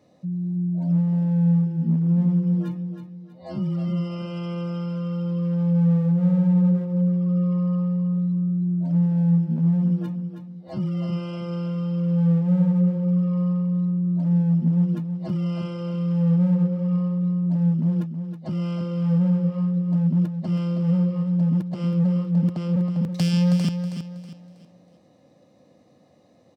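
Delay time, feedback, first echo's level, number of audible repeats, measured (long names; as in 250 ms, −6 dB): 321 ms, 34%, −8.5 dB, 3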